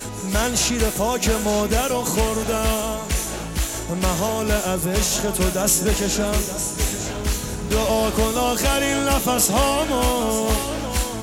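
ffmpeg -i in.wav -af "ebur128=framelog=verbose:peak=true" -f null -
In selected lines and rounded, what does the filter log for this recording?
Integrated loudness:
  I:         -20.9 LUFS
  Threshold: -30.9 LUFS
Loudness range:
  LRA:         2.5 LU
  Threshold: -41.0 LUFS
  LRA low:   -22.2 LUFS
  LRA high:  -19.7 LUFS
True peak:
  Peak:       -6.4 dBFS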